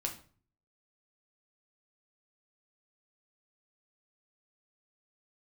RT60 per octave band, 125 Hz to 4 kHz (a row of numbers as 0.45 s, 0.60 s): 0.70 s, 0.60 s, 0.45 s, 0.40 s, 0.35 s, 0.35 s